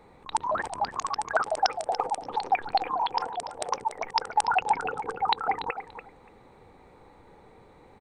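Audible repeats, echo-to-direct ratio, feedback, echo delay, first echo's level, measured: 2, -11.0 dB, 16%, 288 ms, -11.0 dB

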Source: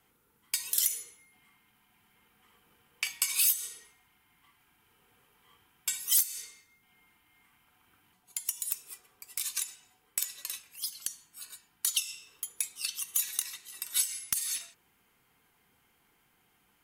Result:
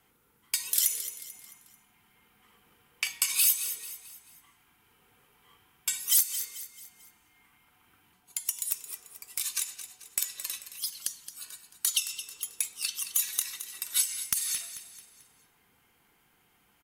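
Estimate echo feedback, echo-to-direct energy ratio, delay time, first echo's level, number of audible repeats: 43%, -11.0 dB, 220 ms, -12.0 dB, 4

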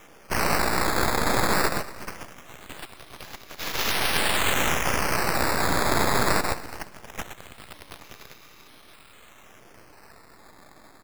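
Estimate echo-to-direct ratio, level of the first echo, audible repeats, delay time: -19.0 dB, -19.5 dB, 2, 239 ms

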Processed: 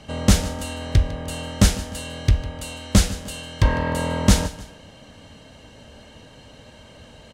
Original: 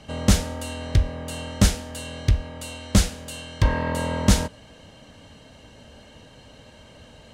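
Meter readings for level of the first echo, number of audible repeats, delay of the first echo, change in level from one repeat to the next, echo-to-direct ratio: -16.5 dB, 2, 152 ms, -8.0 dB, -16.0 dB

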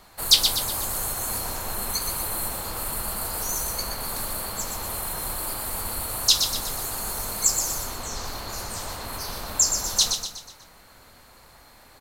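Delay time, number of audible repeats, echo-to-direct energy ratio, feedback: 122 ms, 5, -5.5 dB, 46%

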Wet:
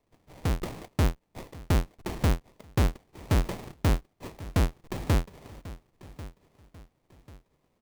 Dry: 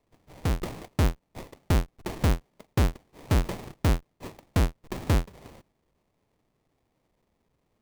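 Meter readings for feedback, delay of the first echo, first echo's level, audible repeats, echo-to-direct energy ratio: 37%, 1092 ms, -17.5 dB, 3, -17.0 dB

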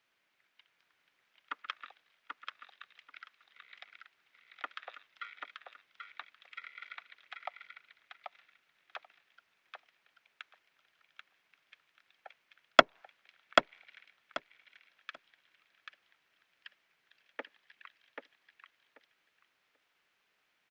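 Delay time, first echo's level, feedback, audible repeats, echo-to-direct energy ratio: 786 ms, -4.5 dB, 17%, 2, -4.5 dB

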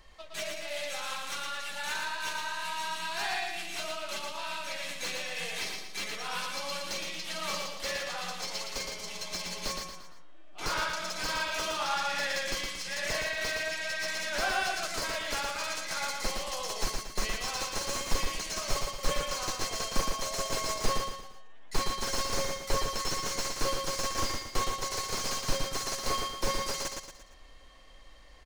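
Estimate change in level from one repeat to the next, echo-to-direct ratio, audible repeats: -7.5 dB, -3.0 dB, 4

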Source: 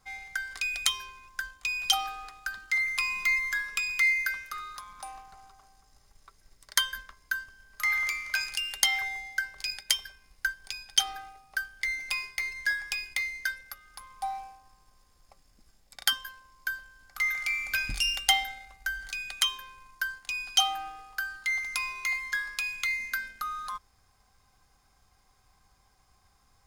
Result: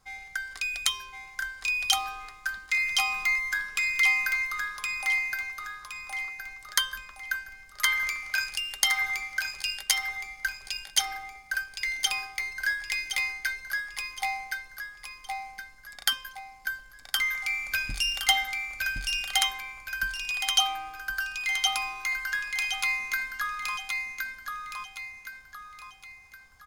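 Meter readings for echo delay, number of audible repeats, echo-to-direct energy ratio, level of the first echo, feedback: 1067 ms, 5, -2.0 dB, -3.0 dB, 40%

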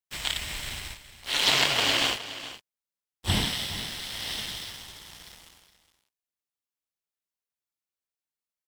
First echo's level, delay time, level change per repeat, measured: -14.0 dB, 416 ms, no regular repeats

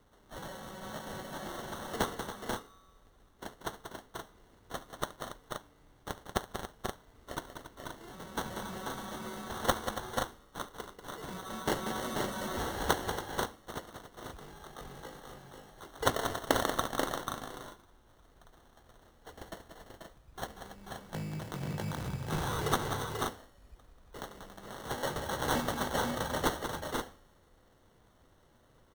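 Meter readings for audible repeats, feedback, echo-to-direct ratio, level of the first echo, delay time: 5, no regular repeats, -2.0 dB, -18.5 dB, 71 ms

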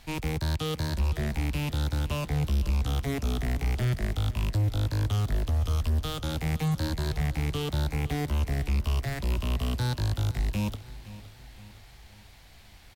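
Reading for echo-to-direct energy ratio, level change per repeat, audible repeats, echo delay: -16.0 dB, -6.0 dB, 3, 516 ms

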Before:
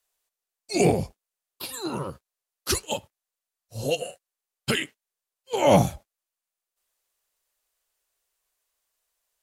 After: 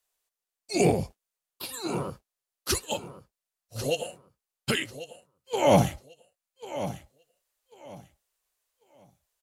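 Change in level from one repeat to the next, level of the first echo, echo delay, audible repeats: -13.0 dB, -13.0 dB, 1093 ms, 2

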